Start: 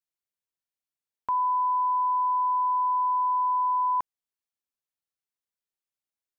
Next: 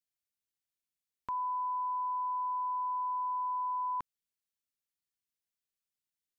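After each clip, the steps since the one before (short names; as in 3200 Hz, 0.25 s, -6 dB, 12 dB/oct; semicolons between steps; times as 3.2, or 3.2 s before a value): bell 770 Hz -11.5 dB 1.6 oct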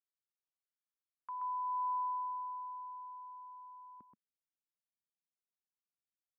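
echo 0.128 s -4.5 dB; band-pass sweep 1200 Hz -> 200 Hz, 1.63–4.23; gain -5 dB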